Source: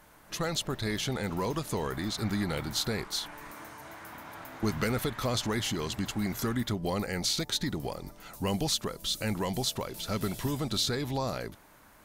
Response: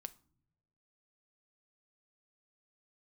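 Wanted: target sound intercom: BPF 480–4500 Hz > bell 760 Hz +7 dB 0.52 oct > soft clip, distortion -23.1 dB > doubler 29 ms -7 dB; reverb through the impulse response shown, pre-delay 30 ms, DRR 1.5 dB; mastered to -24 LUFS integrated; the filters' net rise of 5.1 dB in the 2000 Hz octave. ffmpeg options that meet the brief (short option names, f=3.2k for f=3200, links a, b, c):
-filter_complex "[0:a]equalizer=f=2k:t=o:g=6,asplit=2[a][b];[1:a]atrim=start_sample=2205,adelay=30[c];[b][c]afir=irnorm=-1:irlink=0,volume=3dB[d];[a][d]amix=inputs=2:normalize=0,highpass=480,lowpass=4.5k,equalizer=f=760:t=o:w=0.52:g=7,asoftclip=threshold=-17.5dB,asplit=2[e][f];[f]adelay=29,volume=-7dB[g];[e][g]amix=inputs=2:normalize=0,volume=7dB"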